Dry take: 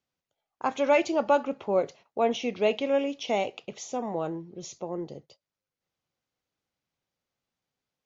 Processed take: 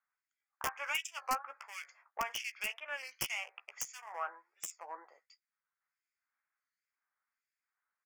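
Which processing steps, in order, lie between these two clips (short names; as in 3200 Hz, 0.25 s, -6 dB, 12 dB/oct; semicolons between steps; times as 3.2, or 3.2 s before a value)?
Wiener smoothing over 15 samples; HPF 1400 Hz 24 dB/oct; compressor 3:1, threshold -47 dBFS, peak gain reduction 16 dB; soft clip -31 dBFS, distortion -26 dB; harmonic tremolo 1.4 Hz, depth 100%, crossover 2000 Hz; wrapped overs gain 39.5 dB; Butterworth band-stop 3900 Hz, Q 2.1; doubler 14 ms -10 dB; record warp 33 1/3 rpm, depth 160 cents; gain +15.5 dB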